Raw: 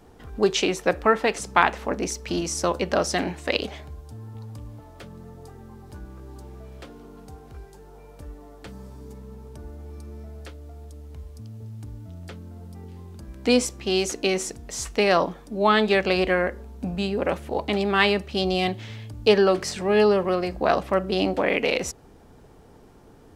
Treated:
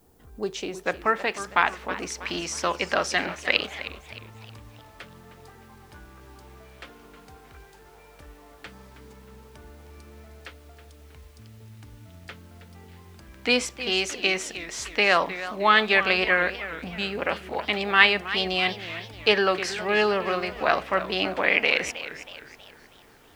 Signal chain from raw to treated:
background noise blue −58 dBFS
parametric band 2,100 Hz −2.5 dB 2.7 octaves, from 0:00.85 +8.5 dB, from 0:02.10 +15 dB
feedback echo with a swinging delay time 315 ms, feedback 44%, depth 189 cents, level −13.5 dB
level −9 dB

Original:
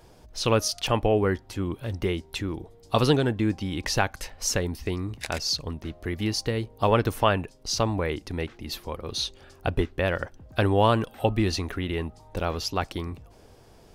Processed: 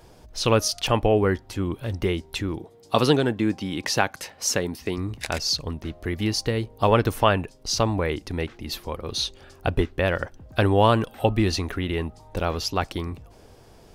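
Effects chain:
0:02.58–0:04.98: high-pass filter 140 Hz 12 dB per octave
level +2.5 dB

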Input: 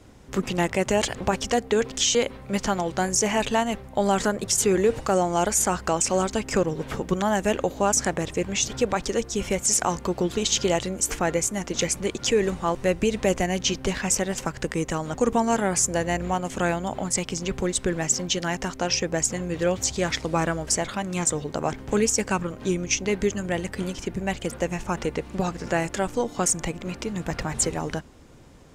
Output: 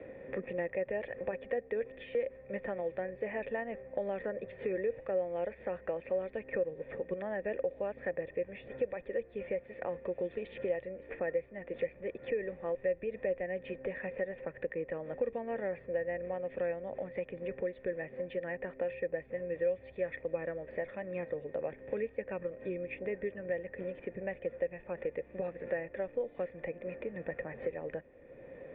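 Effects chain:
formant resonators in series e
multiband upward and downward compressor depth 70%
level −2 dB

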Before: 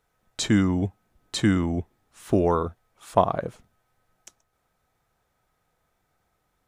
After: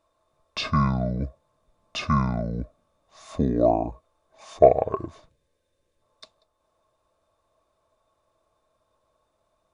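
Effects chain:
change of speed 0.686×
gain on a spectral selection 0:05.29–0:06.02, 600–1,500 Hz −13 dB
hollow resonant body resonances 640/1,100/3,600 Hz, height 17 dB, ringing for 45 ms
level −3.5 dB

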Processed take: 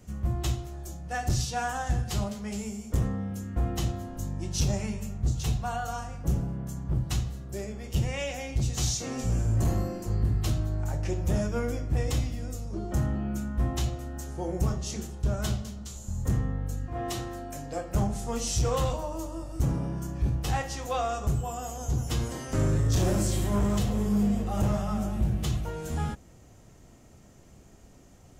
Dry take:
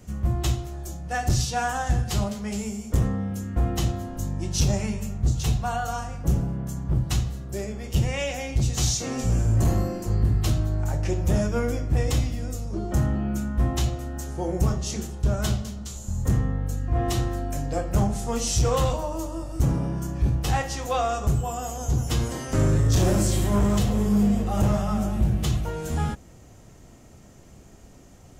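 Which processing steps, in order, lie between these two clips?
0:16.86–0:17.95: low-shelf EQ 140 Hz −12 dB
level −4.5 dB

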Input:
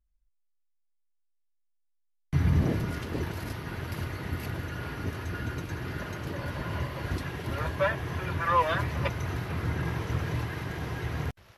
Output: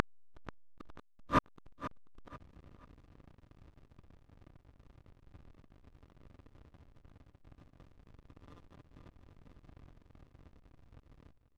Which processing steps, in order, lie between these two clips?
compressor on every frequency bin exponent 0.2
low-pass filter 7,100 Hz 12 dB per octave
in parallel at +2 dB: downward compressor 12 to 1, threshold −27 dBFS, peak gain reduction 14 dB
on the sum: hollow resonant body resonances 280/1,200 Hz, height 13 dB, ringing for 45 ms
gate with flip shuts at −13 dBFS, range −38 dB
slack as between gear wheels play −38 dBFS
on a send: repeating echo 487 ms, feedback 32%, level −14 dB
on the sum: highs frequency-modulated by the lows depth 0.12 ms

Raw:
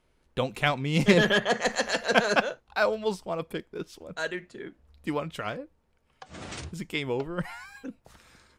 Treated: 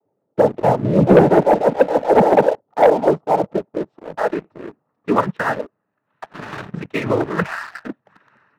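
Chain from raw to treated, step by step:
low-pass filter sweep 580 Hz → 1,400 Hz, 0:02.79–0:05.95
cochlear-implant simulation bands 12
leveller curve on the samples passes 2
level +3 dB

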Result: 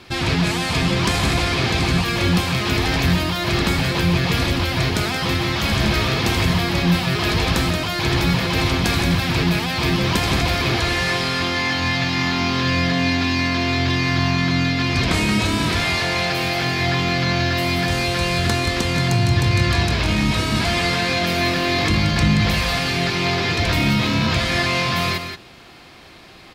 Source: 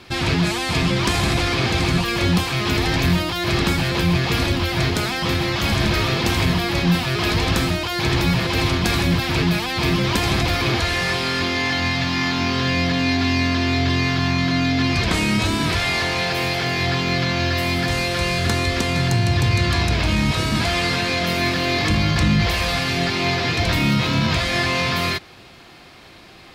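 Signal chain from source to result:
single-tap delay 177 ms −8 dB

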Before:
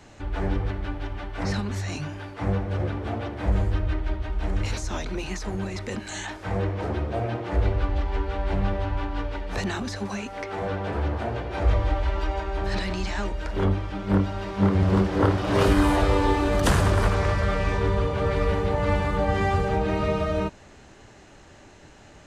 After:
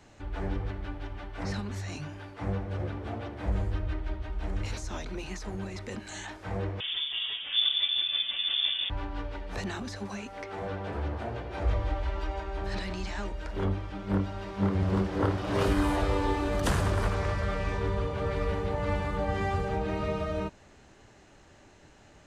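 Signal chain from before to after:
0:06.80–0:08.90: voice inversion scrambler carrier 3,500 Hz
level −6.5 dB

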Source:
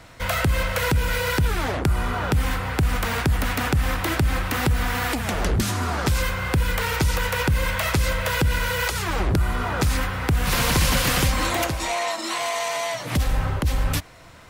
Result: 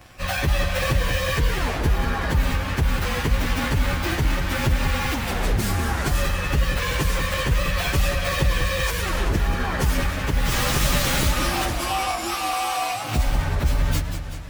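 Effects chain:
partials spread apart or drawn together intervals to 110%
feedback echo with a swinging delay time 190 ms, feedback 61%, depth 188 cents, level −8 dB
level +2.5 dB

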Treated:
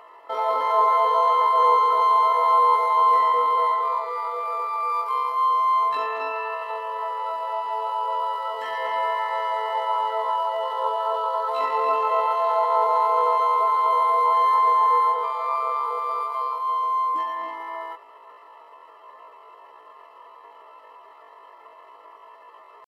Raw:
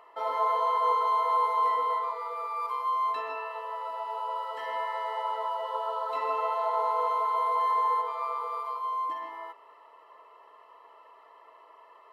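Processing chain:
tempo change 0.53×
level +7.5 dB

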